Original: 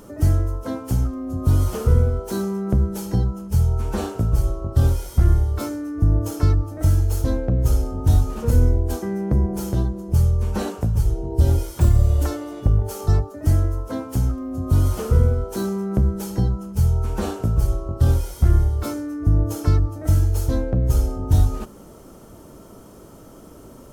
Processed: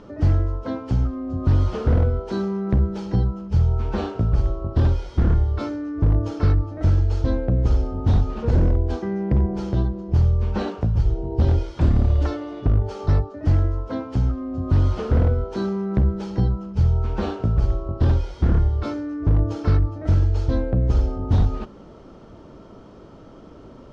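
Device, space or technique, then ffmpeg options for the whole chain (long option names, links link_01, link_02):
synthesiser wavefolder: -af "aeval=exprs='0.299*(abs(mod(val(0)/0.299+3,4)-2)-1)':channel_layout=same,lowpass=frequency=4500:width=0.5412,lowpass=frequency=4500:width=1.3066"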